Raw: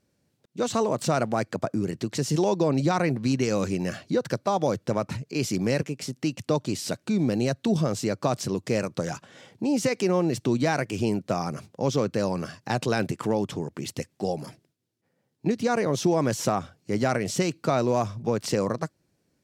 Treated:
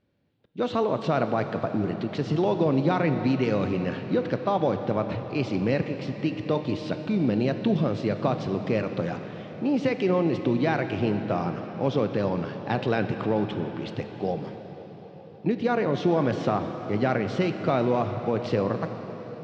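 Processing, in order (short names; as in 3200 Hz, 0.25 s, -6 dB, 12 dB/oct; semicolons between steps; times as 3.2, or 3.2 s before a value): Chebyshev low-pass 3500 Hz, order 3; reverb RT60 5.3 s, pre-delay 3 ms, DRR 7 dB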